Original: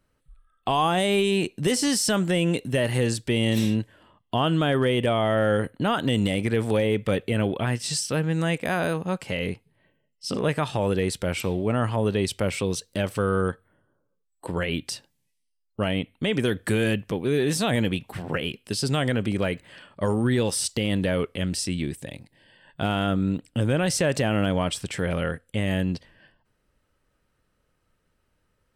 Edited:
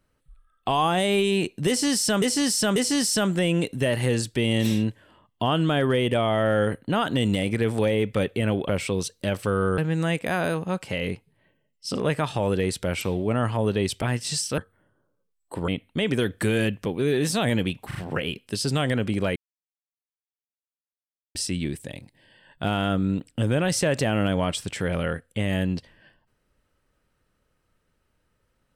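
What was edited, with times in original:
0:01.68–0:02.22: repeat, 3 plays
0:07.61–0:08.17: swap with 0:12.41–0:13.50
0:14.60–0:15.94: remove
0:18.13: stutter 0.04 s, 3 plays
0:19.54–0:21.53: silence

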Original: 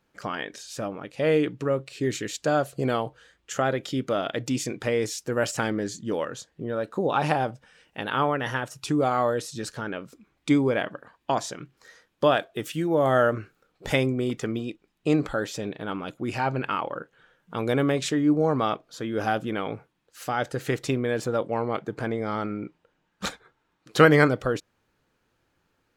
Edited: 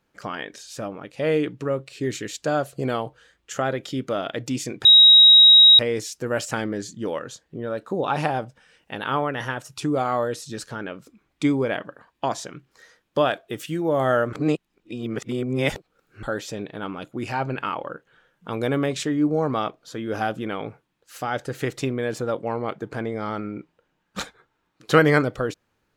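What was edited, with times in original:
0:04.85: insert tone 3,810 Hz −7.5 dBFS 0.94 s
0:13.39–0:15.29: reverse

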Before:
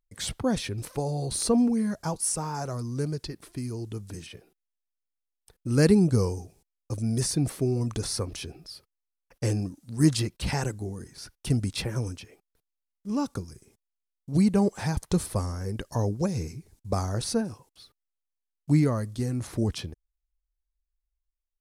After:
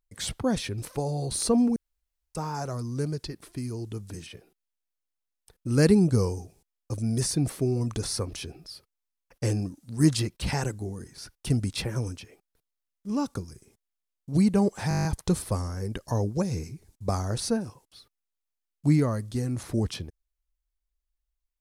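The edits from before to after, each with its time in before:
0:01.76–0:02.35: fill with room tone
0:14.89: stutter 0.02 s, 9 plays

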